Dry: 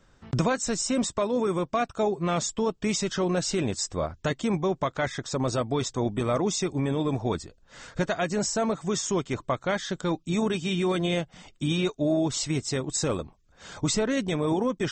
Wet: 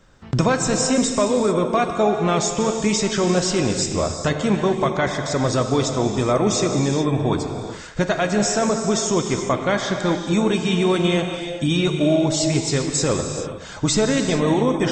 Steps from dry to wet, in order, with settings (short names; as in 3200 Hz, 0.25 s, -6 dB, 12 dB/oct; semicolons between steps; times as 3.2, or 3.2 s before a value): non-linear reverb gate 0.46 s flat, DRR 4 dB; gain +6 dB